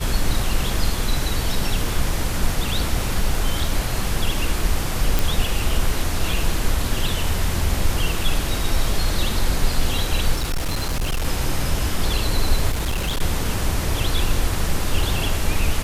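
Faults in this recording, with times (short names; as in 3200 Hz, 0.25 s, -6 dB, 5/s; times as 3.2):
5.19 pop
10.35–11.25 clipped -18.5 dBFS
12.71–13.22 clipped -18.5 dBFS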